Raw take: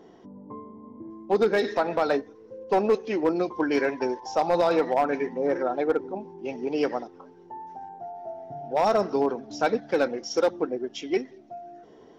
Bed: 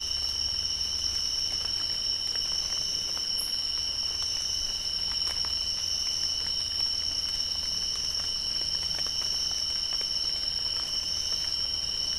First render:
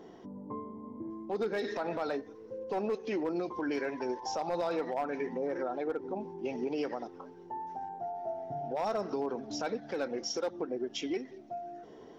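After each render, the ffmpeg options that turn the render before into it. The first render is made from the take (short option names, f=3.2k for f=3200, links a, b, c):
-af "acompressor=threshold=-27dB:ratio=6,alimiter=level_in=1.5dB:limit=-24dB:level=0:latency=1:release=74,volume=-1.5dB"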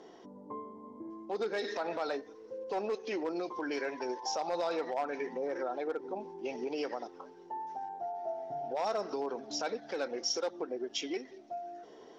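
-af "lowpass=6k,bass=f=250:g=-12,treble=f=4k:g=8"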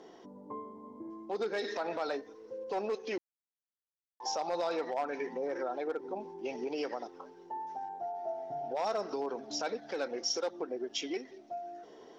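-filter_complex "[0:a]asplit=3[a][b][c];[a]atrim=end=3.18,asetpts=PTS-STARTPTS,afade=t=out:st=3.176:d=0.004:c=hsin[d];[b]atrim=start=3.18:end=4.2,asetpts=PTS-STARTPTS,volume=0[e];[c]atrim=start=4.2,asetpts=PTS-STARTPTS,afade=t=in:d=0.004:c=hsin[f];[d][e][f]concat=n=3:v=0:a=1"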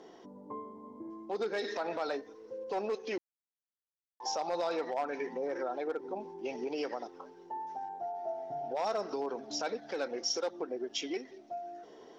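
-af anull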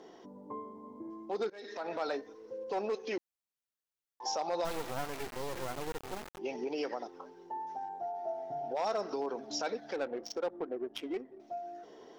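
-filter_complex "[0:a]asplit=3[a][b][c];[a]afade=t=out:st=4.64:d=0.02[d];[b]acrusher=bits=4:dc=4:mix=0:aa=0.000001,afade=t=in:st=4.64:d=0.02,afade=t=out:st=6.37:d=0.02[e];[c]afade=t=in:st=6.37:d=0.02[f];[d][e][f]amix=inputs=3:normalize=0,asettb=1/sr,asplit=3[g][h][i];[g]atrim=end=9.964[j];[h]atrim=start=9.96:end=11.4,asetpts=PTS-STARTPTS,afade=t=in:d=0.004:c=qsin,afade=t=out:st=1.436:d=0.004:c=qsin,adynamicsmooth=sensitivity=4.5:basefreq=760[k];[i]atrim=start=11.396[l];[j][k]acrossfade=d=0.004:c1=hsin:c2=qsin[m];[m][l]acrossfade=d=0.004:c1=qsin:c2=hsin,asplit=2[n][o];[n]atrim=end=1.5,asetpts=PTS-STARTPTS,afade=t=out:st=1.496:d=0.004:c=hsin:silence=0.0630957[p];[o]atrim=start=1.5,asetpts=PTS-STARTPTS,afade=t=in:d=0.52:silence=0.0630957[q];[p][q]concat=n=2:v=0:a=1"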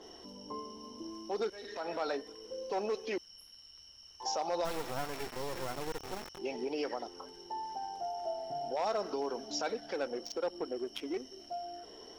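-filter_complex "[1:a]volume=-25.5dB[a];[0:a][a]amix=inputs=2:normalize=0"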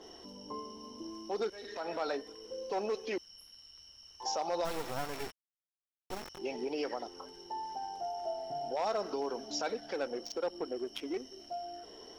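-filter_complex "[0:a]asplit=3[a][b][c];[a]atrim=end=5.32,asetpts=PTS-STARTPTS,afade=t=out:st=5.316:d=0.004:c=hsin[d];[b]atrim=start=5.32:end=6.1,asetpts=PTS-STARTPTS,volume=0[e];[c]atrim=start=6.1,asetpts=PTS-STARTPTS,afade=t=in:d=0.004:c=hsin[f];[d][e][f]concat=n=3:v=0:a=1"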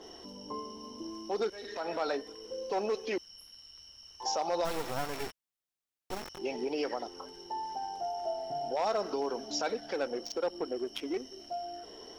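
-af "volume=2.5dB"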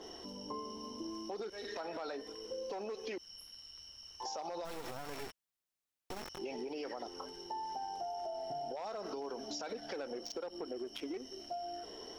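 -af "alimiter=level_in=5dB:limit=-24dB:level=0:latency=1:release=51,volume=-5dB,acompressor=threshold=-38dB:ratio=6"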